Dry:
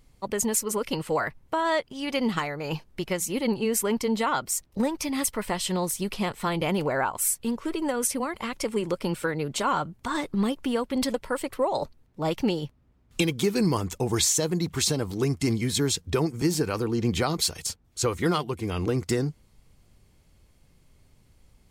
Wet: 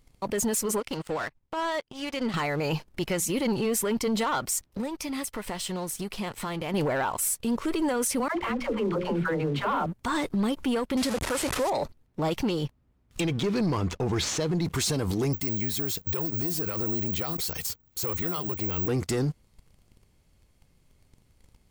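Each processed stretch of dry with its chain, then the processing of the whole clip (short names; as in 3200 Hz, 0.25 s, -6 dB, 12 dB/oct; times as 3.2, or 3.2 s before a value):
0.8–2.34 LPF 8800 Hz + compressor 1.5:1, threshold -41 dBFS + power-law curve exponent 1.4
4.64–6.74 notches 50/100 Hz + compressor 3:1, threshold -41 dBFS
8.28–9.86 air absorption 410 m + notches 60/120/180/240/300/360/420/480/540 Hz + dispersion lows, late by 85 ms, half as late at 530 Hz
10.97–11.7 delta modulation 64 kbps, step -28 dBFS + HPF 47 Hz
13.21–14.65 median filter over 5 samples + air absorption 51 m
15.33–18.88 compressor 2.5:1, threshold -31 dBFS + careless resampling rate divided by 2×, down none, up zero stuff
whole clip: sample leveller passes 2; limiter -21 dBFS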